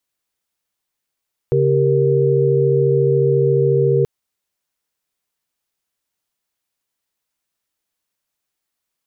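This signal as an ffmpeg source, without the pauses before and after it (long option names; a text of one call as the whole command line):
ffmpeg -f lavfi -i "aevalsrc='0.15*(sin(2*PI*138.59*t)+sin(2*PI*392*t)+sin(2*PI*466.16*t))':duration=2.53:sample_rate=44100" out.wav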